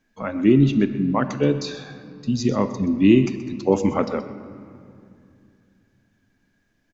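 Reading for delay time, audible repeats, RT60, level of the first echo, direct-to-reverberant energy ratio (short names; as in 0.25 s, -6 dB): 0.127 s, 1, 2.5 s, -15.0 dB, 10.5 dB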